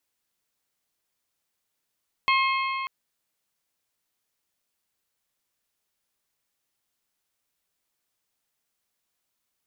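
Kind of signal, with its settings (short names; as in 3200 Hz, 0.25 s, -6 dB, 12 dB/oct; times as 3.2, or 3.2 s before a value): metal hit bell, length 0.59 s, lowest mode 1070 Hz, modes 5, decay 3.41 s, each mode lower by 3 dB, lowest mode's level -20 dB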